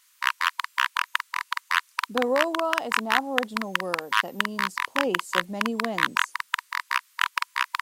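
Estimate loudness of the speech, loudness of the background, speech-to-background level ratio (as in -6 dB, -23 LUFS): -31.0 LUFS, -27.0 LUFS, -4.0 dB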